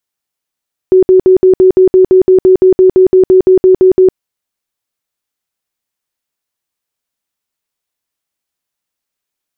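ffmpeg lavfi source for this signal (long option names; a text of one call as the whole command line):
ffmpeg -f lavfi -i "aevalsrc='0.794*sin(2*PI*373*mod(t,0.17))*lt(mod(t,0.17),40/373)':duration=3.23:sample_rate=44100" out.wav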